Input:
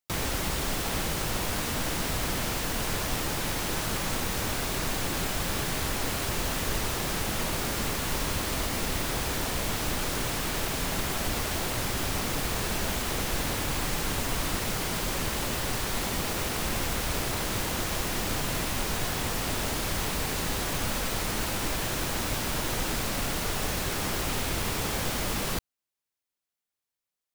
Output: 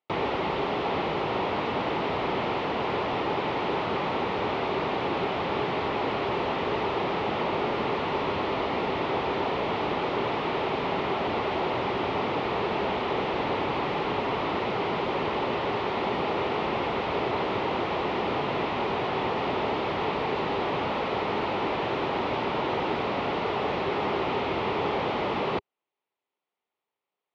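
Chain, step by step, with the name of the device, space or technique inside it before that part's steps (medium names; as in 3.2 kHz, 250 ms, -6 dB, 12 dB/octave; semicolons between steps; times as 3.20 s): overdrive pedal into a guitar cabinet (overdrive pedal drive 17 dB, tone 1.1 kHz, clips at -15 dBFS; cabinet simulation 98–3600 Hz, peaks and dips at 400 Hz +7 dB, 870 Hz +4 dB, 1.6 kHz -9 dB); trim +1.5 dB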